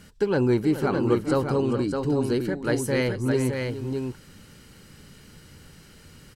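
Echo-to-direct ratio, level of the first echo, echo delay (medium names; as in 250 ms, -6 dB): -4.0 dB, -12.0 dB, 421 ms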